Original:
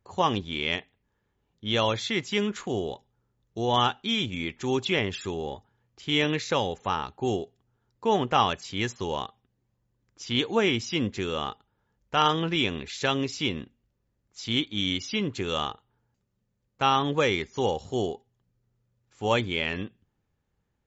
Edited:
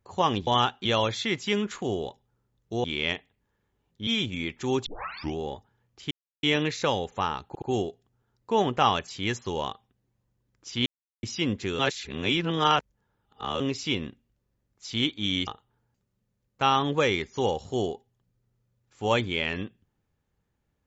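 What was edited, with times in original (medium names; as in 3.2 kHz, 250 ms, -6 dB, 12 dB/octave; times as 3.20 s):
0.47–1.70 s: swap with 3.69–4.07 s
4.86 s: tape start 0.51 s
6.11 s: insert silence 0.32 s
7.16 s: stutter 0.07 s, 3 plays
10.40–10.77 s: mute
11.33–13.14 s: reverse
15.01–15.67 s: delete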